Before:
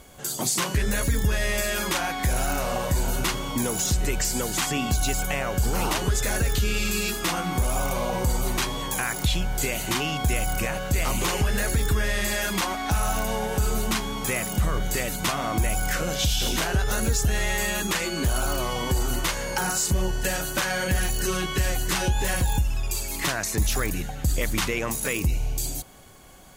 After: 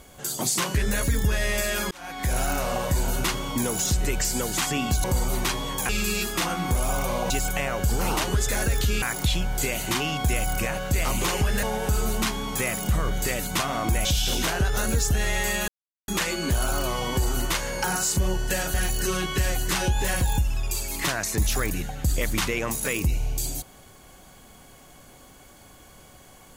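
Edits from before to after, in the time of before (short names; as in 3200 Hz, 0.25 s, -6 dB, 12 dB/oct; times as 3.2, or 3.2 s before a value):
1.91–2.36 fade in
5.04–6.76 swap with 8.17–9.02
11.63–13.32 cut
15.74–16.19 cut
17.82 insert silence 0.40 s
20.48–20.94 cut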